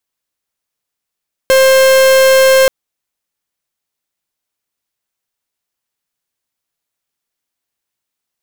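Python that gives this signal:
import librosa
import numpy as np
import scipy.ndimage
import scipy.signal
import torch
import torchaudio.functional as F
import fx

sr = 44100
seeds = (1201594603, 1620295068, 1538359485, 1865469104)

y = fx.pulse(sr, length_s=1.18, hz=529.0, level_db=-7.5, duty_pct=44)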